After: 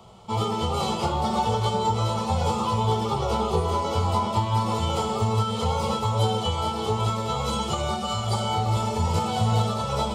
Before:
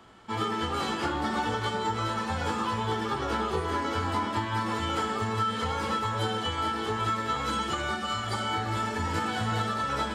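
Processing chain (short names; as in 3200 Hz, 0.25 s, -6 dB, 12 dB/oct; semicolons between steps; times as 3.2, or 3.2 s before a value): bell 190 Hz +8.5 dB 2 oct; fixed phaser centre 690 Hz, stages 4; gain +6.5 dB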